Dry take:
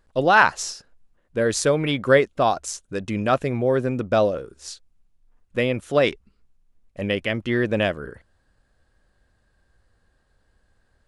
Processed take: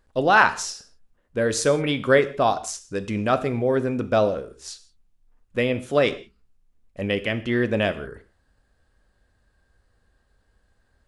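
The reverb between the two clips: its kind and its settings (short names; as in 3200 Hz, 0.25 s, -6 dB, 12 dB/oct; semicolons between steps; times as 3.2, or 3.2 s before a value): non-linear reverb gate 0.2 s falling, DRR 10.5 dB; gain -1 dB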